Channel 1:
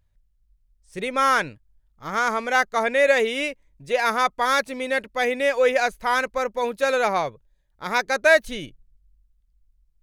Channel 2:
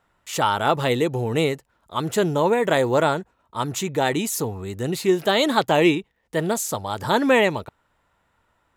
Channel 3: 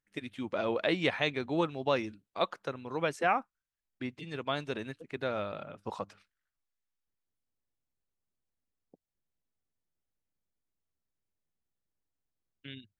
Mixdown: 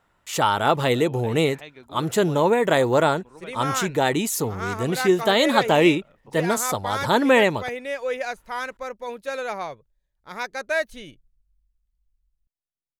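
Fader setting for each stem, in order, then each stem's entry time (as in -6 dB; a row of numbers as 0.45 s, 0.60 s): -8.0 dB, +0.5 dB, -11.5 dB; 2.45 s, 0.00 s, 0.40 s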